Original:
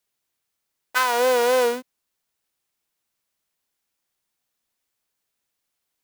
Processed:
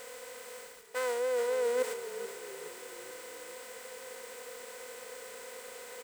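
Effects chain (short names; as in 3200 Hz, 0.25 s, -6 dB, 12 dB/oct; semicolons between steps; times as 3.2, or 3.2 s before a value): per-bin compression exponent 0.4; gate -36 dBFS, range -8 dB; thirty-one-band EQ 500 Hz +12 dB, 2000 Hz +6 dB, 8000 Hz +11 dB; reverse; compressor 16:1, threshold -29 dBFS, peak gain reduction 24.5 dB; reverse; bit-crush 9-bit; on a send: frequency-shifting echo 0.428 s, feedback 41%, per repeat -41 Hz, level -11 dB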